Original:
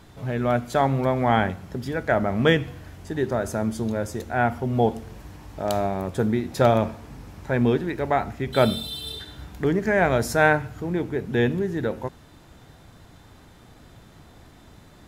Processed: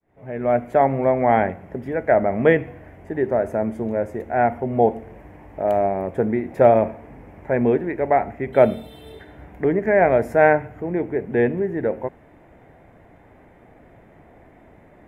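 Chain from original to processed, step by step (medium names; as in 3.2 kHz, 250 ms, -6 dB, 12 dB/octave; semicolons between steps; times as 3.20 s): fade-in on the opening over 0.59 s; FFT filter 120 Hz 0 dB, 650 Hz +11 dB, 1.3 kHz -1 dB, 2.1 kHz +8 dB, 4.1 kHz -20 dB, 12 kHz -10 dB; trim -4 dB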